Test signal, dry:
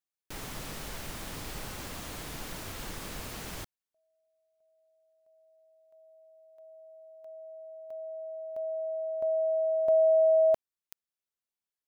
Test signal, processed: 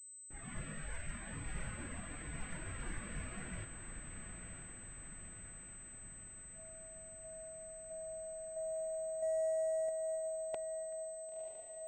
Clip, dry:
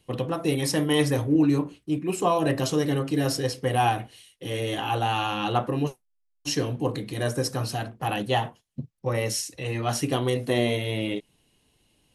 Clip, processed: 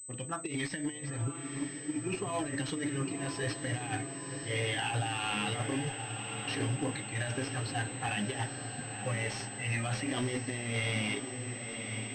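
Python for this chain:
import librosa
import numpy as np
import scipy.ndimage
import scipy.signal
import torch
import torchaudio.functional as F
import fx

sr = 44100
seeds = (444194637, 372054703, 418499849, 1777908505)

p1 = fx.env_lowpass(x, sr, base_hz=1000.0, full_db=-20.5)
p2 = fx.noise_reduce_blind(p1, sr, reduce_db=12)
p3 = fx.graphic_eq_10(p2, sr, hz=(500, 1000, 2000), db=(-6, -7, 6))
p4 = fx.over_compress(p3, sr, threshold_db=-31.0, ratio=-0.5)
p5 = 10.0 ** (-24.5 / 20.0) * np.tanh(p4 / 10.0 ** (-24.5 / 20.0))
p6 = p5 + fx.echo_diffused(p5, sr, ms=1011, feedback_pct=64, wet_db=-7.0, dry=0)
p7 = fx.pwm(p6, sr, carrier_hz=8100.0)
y = p7 * librosa.db_to_amplitude(-1.0)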